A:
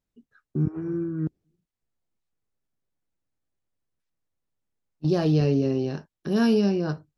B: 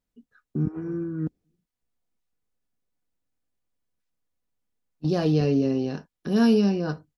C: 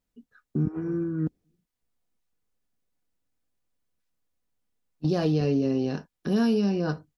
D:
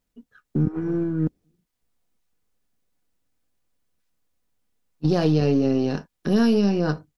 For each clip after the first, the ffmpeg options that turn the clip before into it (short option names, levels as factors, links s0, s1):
-af "aecho=1:1:4.1:0.3"
-af "acompressor=threshold=0.0794:ratio=4,volume=1.19"
-af "aeval=exprs='if(lt(val(0),0),0.708*val(0),val(0))':c=same,volume=1.88"